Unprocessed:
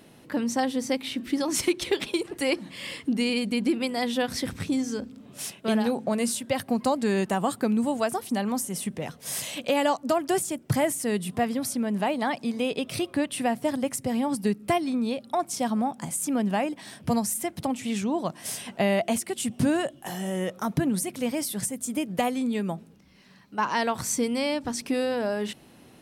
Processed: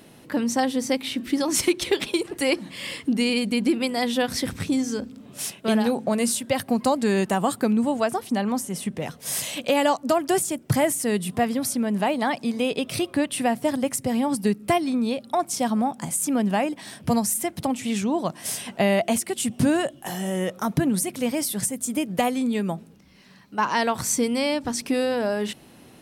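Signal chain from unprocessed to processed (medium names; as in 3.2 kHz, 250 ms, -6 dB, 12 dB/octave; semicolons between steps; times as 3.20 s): treble shelf 6.6 kHz +2.5 dB, from 7.72 s -6.5 dB, from 8.97 s +2 dB; trim +3 dB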